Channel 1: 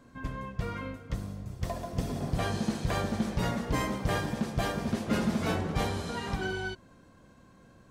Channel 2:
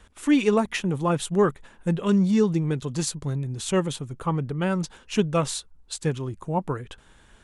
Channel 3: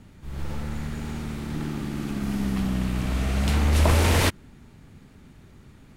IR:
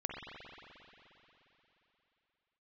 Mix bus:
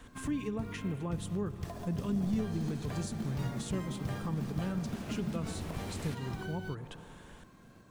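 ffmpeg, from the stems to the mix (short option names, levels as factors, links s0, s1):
-filter_complex "[0:a]highpass=63,bandreject=f=530:w=13,volume=0.891[s0];[1:a]acompressor=threshold=0.00447:ratio=1.5,volume=0.75,asplit=2[s1][s2];[s2]volume=0.266[s3];[2:a]equalizer=f=69:w=1.5:g=-11.5,adelay=1850,volume=0.266[s4];[s0][s4]amix=inputs=2:normalize=0,acrusher=bits=5:mode=log:mix=0:aa=0.000001,acompressor=threshold=0.0126:ratio=2,volume=1[s5];[3:a]atrim=start_sample=2205[s6];[s3][s6]afir=irnorm=-1:irlink=0[s7];[s1][s5][s7]amix=inputs=3:normalize=0,acrossover=split=280[s8][s9];[s9]acompressor=threshold=0.00708:ratio=3[s10];[s8][s10]amix=inputs=2:normalize=0"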